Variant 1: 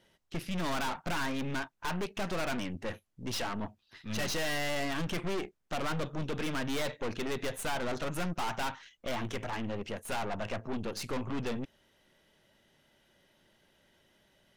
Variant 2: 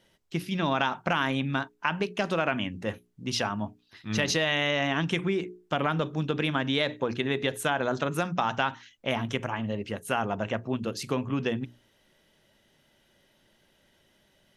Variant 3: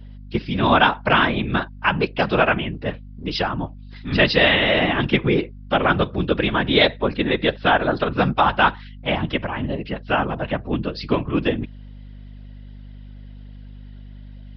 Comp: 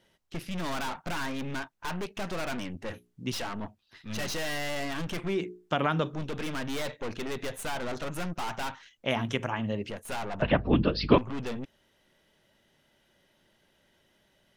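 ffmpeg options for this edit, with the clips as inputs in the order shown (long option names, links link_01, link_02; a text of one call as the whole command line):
ffmpeg -i take0.wav -i take1.wav -i take2.wav -filter_complex "[1:a]asplit=3[link_01][link_02][link_03];[0:a]asplit=5[link_04][link_05][link_06][link_07][link_08];[link_04]atrim=end=2.922[link_09];[link_01]atrim=start=2.918:end=3.322[link_10];[link_05]atrim=start=3.318:end=5.39[link_11];[link_02]atrim=start=5.23:end=6.21[link_12];[link_06]atrim=start=6.05:end=8.962[link_13];[link_03]atrim=start=8.958:end=9.902[link_14];[link_07]atrim=start=9.898:end=10.422[link_15];[2:a]atrim=start=10.418:end=11.182[link_16];[link_08]atrim=start=11.178[link_17];[link_09][link_10]acrossfade=duration=0.004:curve1=hsin:curve2=hsin[link_18];[link_18][link_11]acrossfade=duration=0.004:curve1=hsin:curve2=hsin[link_19];[link_19][link_12]acrossfade=duration=0.16:curve1=tri:curve2=tri[link_20];[link_20][link_13]acrossfade=duration=0.16:curve1=tri:curve2=tri[link_21];[link_21][link_14]acrossfade=duration=0.004:curve1=hsin:curve2=hsin[link_22];[link_22][link_15]acrossfade=duration=0.004:curve1=hsin:curve2=hsin[link_23];[link_23][link_16]acrossfade=duration=0.004:curve1=hsin:curve2=hsin[link_24];[link_24][link_17]acrossfade=duration=0.004:curve1=hsin:curve2=hsin" out.wav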